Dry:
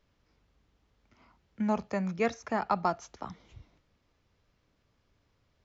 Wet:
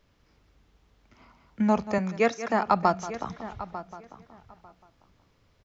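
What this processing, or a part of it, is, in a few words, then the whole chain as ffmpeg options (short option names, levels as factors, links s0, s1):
ducked delay: -filter_complex "[0:a]asplit=2[s0][s1];[s1]adelay=897,lowpass=f=3000:p=1,volume=0.2,asplit=2[s2][s3];[s3]adelay=897,lowpass=f=3000:p=1,volume=0.17[s4];[s0][s2][s4]amix=inputs=3:normalize=0,asettb=1/sr,asplit=3[s5][s6][s7];[s5]atrim=end=1.984[s8];[s6]atrim=start=1.98:end=2.66,asetpts=PTS-STARTPTS,afade=t=in:d=0.004:c=qsin,afade=t=out:st=0.676:d=0.004:c=qsin,highpass=210[s9];[s7]atrim=start=2.656[s10];[s8][s9]acrossfade=d=0.004:c1=hsin:c2=qsin[s11];[s11][s10]acrossfade=d=0.004:c1=qsin:c2=hsin,asplit=3[s12][s13][s14];[s13]adelay=182,volume=0.447[s15];[s14]apad=whole_len=335880[s16];[s15][s16]sidechaincompress=threshold=0.00282:ratio=8:attack=8.6:release=110[s17];[s12][s17]amix=inputs=2:normalize=0,volume=2"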